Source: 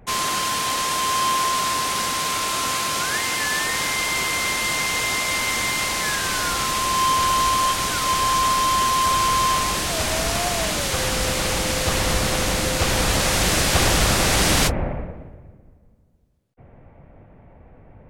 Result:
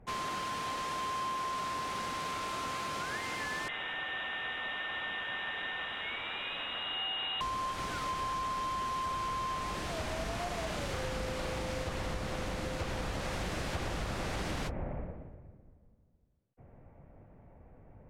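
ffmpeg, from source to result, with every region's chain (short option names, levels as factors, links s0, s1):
-filter_complex "[0:a]asettb=1/sr,asplit=3[s0][s1][s2];[s0]atrim=end=3.684[s3];[s1]atrim=start=3.68:end=7.41,asetpts=PTS-STARTPTS,afade=t=in:d=0.004:c=qsin,afade=t=out:st=3.726:d=0.004:c=qsin,lowpass=f=3300:t=q:w=0.5098,lowpass=f=3300:t=q:w=0.6013,lowpass=f=3300:t=q:w=0.9,lowpass=f=3300:t=q:w=2.563,afreqshift=-3900,aeval=exprs='sgn(val(0))*max(abs(val(0))-0.00398,0)':c=same[s4];[s2]atrim=start=7.406[s5];[s3][s4]acrossfade=d=0.004:c1=hsin:c2=qsin[s6];[s6][s5]acrossfade=d=0.004:c1=qsin:c2=hsin,asettb=1/sr,asplit=3[s7][s8][s9];[s7]atrim=end=10.164[s10];[s8]atrim=start=10.16:end=11.84,asetpts=PTS-STARTPTS,afade=t=in:d=0.004:c=qsin,afade=t=out:st=1.676:d=0.004:c=qsin,acrusher=bits=9:mode=log:mix=0:aa=0.000001,asplit=2[s11][s12];[s12]adelay=37,volume=0.75[s13];[s11][s13]amix=inputs=2:normalize=0,atrim=end_sample=74088[s14];[s9]atrim=start=11.836[s15];[s10][s14]acrossfade=d=0.004:c1=hsin:c2=qsin[s16];[s16][s15]acrossfade=d=0.004:c1=qsin:c2=hsin,lowpass=f=1800:p=1,acompressor=threshold=0.0631:ratio=6,volume=0.376"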